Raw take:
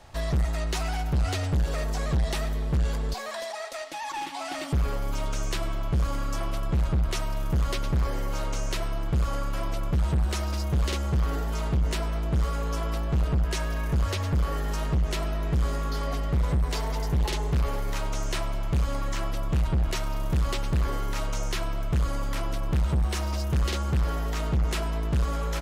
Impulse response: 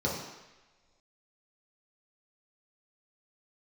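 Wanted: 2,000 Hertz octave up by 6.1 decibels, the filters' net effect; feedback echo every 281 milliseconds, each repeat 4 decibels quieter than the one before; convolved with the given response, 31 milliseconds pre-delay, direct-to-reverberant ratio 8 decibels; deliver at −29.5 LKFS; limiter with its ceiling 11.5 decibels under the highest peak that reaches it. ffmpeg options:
-filter_complex "[0:a]equalizer=frequency=2000:width_type=o:gain=7.5,alimiter=level_in=5dB:limit=-24dB:level=0:latency=1,volume=-5dB,aecho=1:1:281|562|843|1124|1405|1686|1967|2248|2529:0.631|0.398|0.25|0.158|0.0994|0.0626|0.0394|0.0249|0.0157,asplit=2[link_01][link_02];[1:a]atrim=start_sample=2205,adelay=31[link_03];[link_02][link_03]afir=irnorm=-1:irlink=0,volume=-17dB[link_04];[link_01][link_04]amix=inputs=2:normalize=0,volume=4dB"

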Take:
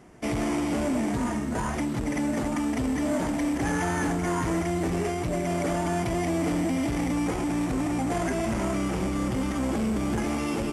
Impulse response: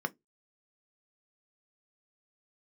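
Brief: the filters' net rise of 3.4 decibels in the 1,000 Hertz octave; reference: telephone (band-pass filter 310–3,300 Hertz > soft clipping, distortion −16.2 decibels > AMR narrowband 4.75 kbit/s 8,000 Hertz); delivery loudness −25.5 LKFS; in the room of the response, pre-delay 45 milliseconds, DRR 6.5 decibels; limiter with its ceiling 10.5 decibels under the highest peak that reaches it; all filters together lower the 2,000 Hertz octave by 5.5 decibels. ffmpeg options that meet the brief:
-filter_complex "[0:a]equalizer=frequency=1000:width_type=o:gain=6.5,equalizer=frequency=2000:width_type=o:gain=-8.5,alimiter=level_in=3dB:limit=-24dB:level=0:latency=1,volume=-3dB,asplit=2[link_01][link_02];[1:a]atrim=start_sample=2205,adelay=45[link_03];[link_02][link_03]afir=irnorm=-1:irlink=0,volume=-11.5dB[link_04];[link_01][link_04]amix=inputs=2:normalize=0,highpass=310,lowpass=3300,asoftclip=threshold=-31.5dB,volume=15dB" -ar 8000 -c:a libopencore_amrnb -b:a 4750

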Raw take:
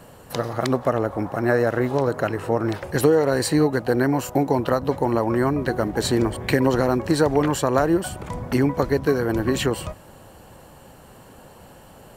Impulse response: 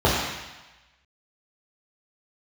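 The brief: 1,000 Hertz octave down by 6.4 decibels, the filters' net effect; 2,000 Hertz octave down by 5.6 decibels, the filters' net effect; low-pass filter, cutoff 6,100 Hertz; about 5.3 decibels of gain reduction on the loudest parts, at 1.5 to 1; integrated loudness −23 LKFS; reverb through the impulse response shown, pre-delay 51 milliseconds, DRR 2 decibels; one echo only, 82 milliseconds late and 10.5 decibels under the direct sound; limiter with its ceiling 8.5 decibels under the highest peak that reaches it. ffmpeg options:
-filter_complex "[0:a]lowpass=6100,equalizer=frequency=1000:width_type=o:gain=-8,equalizer=frequency=2000:width_type=o:gain=-4,acompressor=threshold=-29dB:ratio=1.5,alimiter=limit=-20dB:level=0:latency=1,aecho=1:1:82:0.299,asplit=2[link_01][link_02];[1:a]atrim=start_sample=2205,adelay=51[link_03];[link_02][link_03]afir=irnorm=-1:irlink=0,volume=-23dB[link_04];[link_01][link_04]amix=inputs=2:normalize=0,volume=3dB"

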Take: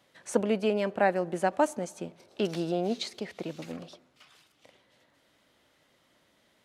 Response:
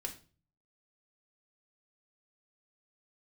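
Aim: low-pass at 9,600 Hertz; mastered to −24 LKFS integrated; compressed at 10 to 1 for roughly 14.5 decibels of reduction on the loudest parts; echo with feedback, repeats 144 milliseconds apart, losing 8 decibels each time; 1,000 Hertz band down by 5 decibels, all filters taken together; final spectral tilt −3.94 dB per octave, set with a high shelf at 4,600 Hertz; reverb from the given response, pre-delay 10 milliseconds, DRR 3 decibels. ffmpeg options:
-filter_complex "[0:a]lowpass=9600,equalizer=frequency=1000:width_type=o:gain=-7.5,highshelf=frequency=4600:gain=8,acompressor=threshold=-35dB:ratio=10,aecho=1:1:144|288|432|576|720:0.398|0.159|0.0637|0.0255|0.0102,asplit=2[link_01][link_02];[1:a]atrim=start_sample=2205,adelay=10[link_03];[link_02][link_03]afir=irnorm=-1:irlink=0,volume=-2dB[link_04];[link_01][link_04]amix=inputs=2:normalize=0,volume=14.5dB"

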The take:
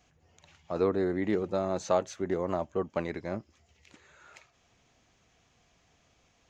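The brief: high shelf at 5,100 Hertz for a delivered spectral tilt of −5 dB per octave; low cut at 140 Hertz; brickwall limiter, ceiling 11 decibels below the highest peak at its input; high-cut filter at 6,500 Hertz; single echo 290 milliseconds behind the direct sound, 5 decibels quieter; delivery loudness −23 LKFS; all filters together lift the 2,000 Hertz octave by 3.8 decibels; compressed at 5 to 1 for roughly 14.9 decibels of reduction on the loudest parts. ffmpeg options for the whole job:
ffmpeg -i in.wav -af "highpass=140,lowpass=6500,equalizer=frequency=2000:width_type=o:gain=5.5,highshelf=frequency=5100:gain=-7.5,acompressor=threshold=-38dB:ratio=5,alimiter=level_in=10dB:limit=-24dB:level=0:latency=1,volume=-10dB,aecho=1:1:290:0.562,volume=23dB" out.wav

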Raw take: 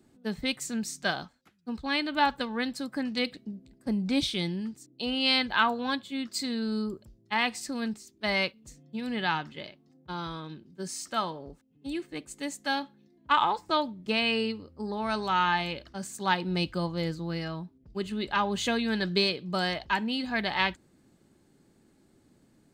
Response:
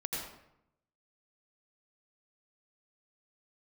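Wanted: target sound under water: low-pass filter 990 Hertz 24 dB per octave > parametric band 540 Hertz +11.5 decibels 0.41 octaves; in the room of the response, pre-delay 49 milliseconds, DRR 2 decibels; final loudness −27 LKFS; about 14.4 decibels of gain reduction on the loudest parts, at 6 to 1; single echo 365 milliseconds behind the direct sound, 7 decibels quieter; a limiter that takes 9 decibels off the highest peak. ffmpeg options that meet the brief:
-filter_complex "[0:a]acompressor=threshold=-35dB:ratio=6,alimiter=level_in=6dB:limit=-24dB:level=0:latency=1,volume=-6dB,aecho=1:1:365:0.447,asplit=2[link_01][link_02];[1:a]atrim=start_sample=2205,adelay=49[link_03];[link_02][link_03]afir=irnorm=-1:irlink=0,volume=-5dB[link_04];[link_01][link_04]amix=inputs=2:normalize=0,lowpass=frequency=990:width=0.5412,lowpass=frequency=990:width=1.3066,equalizer=frequency=540:width_type=o:width=0.41:gain=11.5,volume=10.5dB"

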